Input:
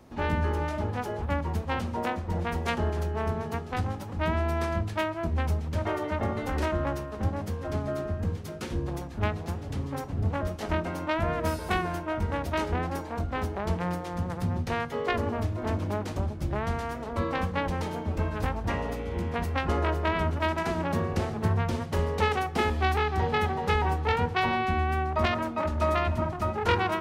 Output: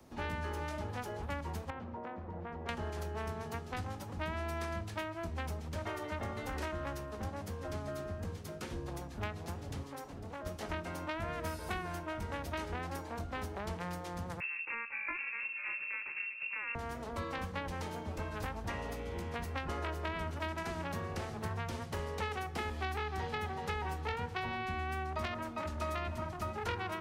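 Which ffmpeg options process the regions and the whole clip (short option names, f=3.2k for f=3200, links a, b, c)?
-filter_complex "[0:a]asettb=1/sr,asplit=3[a][b][c];[a]atrim=end=1.704[d];[b]atrim=start=1.7:end=2.69,asetpts=PTS-STARTPTS,afade=t=in:d=0.004:c=qsin,afade=t=out:st=0.986:d=0.004:c=qsin,lowpass=1.6k,lowshelf=f=64:g=-12,acompressor=threshold=-33dB:ratio=5:attack=3.2:release=140:knee=1:detection=peak[e];[c]atrim=start=2.686[f];[d][e]acrossfade=d=0.004:c1=hsin:c2=qsin[g];[g][f]acrossfade=d=0.004:c1=qsin:c2=hsin,asettb=1/sr,asplit=3[h][i][j];[h]atrim=end=9.834[k];[i]atrim=start=9.83:end=10.46,asetpts=PTS-STARTPTS,afade=t=in:d=0.004:c=qsin,afade=t=out:st=0.626:d=0.004:c=qsin,equalizer=f=90:t=o:w=2.4:g=-12.5,acompressor=threshold=-36dB:ratio=2.5:attack=3.2:release=140:knee=1:detection=peak[l];[j]atrim=start=10.456[m];[k][l]acrossfade=d=0.004:c1=hsin:c2=qsin[n];[n][m]acrossfade=d=0.004:c1=qsin:c2=hsin,asettb=1/sr,asplit=3[o][p][q];[o]atrim=end=14.404[r];[p]atrim=start=14.4:end=16.75,asetpts=PTS-STARTPTS,afade=t=in:d=0.004:c=qsin,afade=t=out:st=2.346:d=0.004:c=qsin,bandreject=f=2.1k:w=9.4,lowpass=f=2.4k:t=q:w=0.5098,lowpass=f=2.4k:t=q:w=0.6013,lowpass=f=2.4k:t=q:w=0.9,lowpass=f=2.4k:t=q:w=2.563,afreqshift=-2800[s];[q]atrim=start=16.746[t];[r][s]acrossfade=d=0.004:c1=hsin:c2=qsin[u];[u][t]acrossfade=d=0.004:c1=qsin:c2=hsin,bass=f=250:g=-1,treble=f=4k:g=5,acrossover=split=120|490|1300|2700[v][w][x][y][z];[v]acompressor=threshold=-37dB:ratio=4[aa];[w]acompressor=threshold=-40dB:ratio=4[ab];[x]acompressor=threshold=-39dB:ratio=4[ac];[y]acompressor=threshold=-37dB:ratio=4[ad];[z]acompressor=threshold=-46dB:ratio=4[ae];[aa][ab][ac][ad][ae]amix=inputs=5:normalize=0,volume=-5dB"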